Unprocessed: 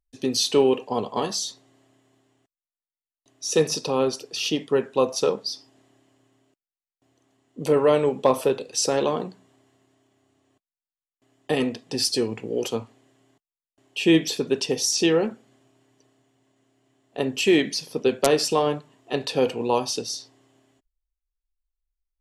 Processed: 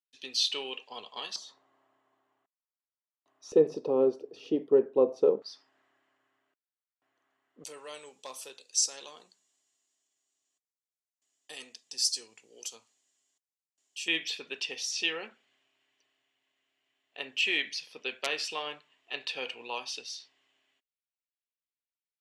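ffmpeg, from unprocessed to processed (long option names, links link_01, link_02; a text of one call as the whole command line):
ffmpeg -i in.wav -af "asetnsamples=nb_out_samples=441:pad=0,asendcmd='1.36 bandpass f 1100;3.52 bandpass f 400;5.42 bandpass f 1500;7.64 bandpass f 6800;14.08 bandpass f 2600',bandpass=frequency=3200:width_type=q:width=1.8:csg=0" out.wav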